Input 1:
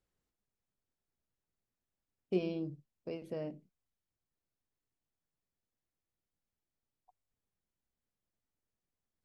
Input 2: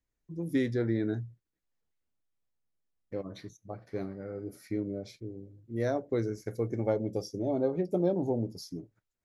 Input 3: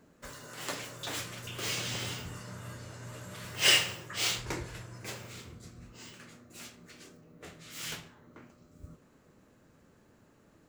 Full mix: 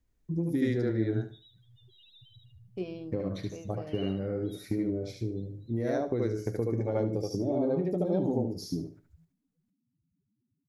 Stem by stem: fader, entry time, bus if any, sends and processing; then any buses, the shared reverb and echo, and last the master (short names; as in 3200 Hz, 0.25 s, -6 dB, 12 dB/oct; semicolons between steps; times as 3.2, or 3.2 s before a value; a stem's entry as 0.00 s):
-3.5 dB, 0.45 s, no bus, no send, no echo send, dry
+2.5 dB, 0.00 s, bus A, no send, echo send -4.5 dB, dry
-5.5 dB, 0.30 s, bus A, no send, echo send -14.5 dB, ladder low-pass 4200 Hz, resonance 70%; loudest bins only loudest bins 2
bus A: 0.0 dB, low shelf 430 Hz +10 dB; compressor 6:1, threshold -28 dBFS, peak gain reduction 14 dB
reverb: off
echo: feedback echo 73 ms, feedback 24%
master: dry